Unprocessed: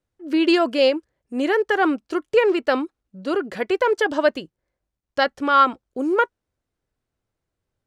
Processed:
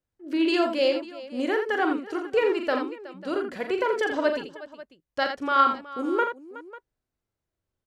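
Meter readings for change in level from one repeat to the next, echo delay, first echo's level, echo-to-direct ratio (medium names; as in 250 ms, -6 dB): no regular repeats, 40 ms, -7.5 dB, -4.0 dB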